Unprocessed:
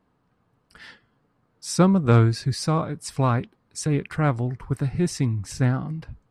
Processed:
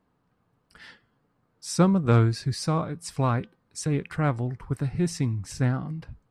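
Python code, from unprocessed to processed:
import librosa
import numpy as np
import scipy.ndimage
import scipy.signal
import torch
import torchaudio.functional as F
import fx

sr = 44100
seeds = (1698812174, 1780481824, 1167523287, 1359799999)

y = fx.comb_fb(x, sr, f0_hz=170.0, decay_s=0.4, harmonics='odd', damping=0.0, mix_pct=30)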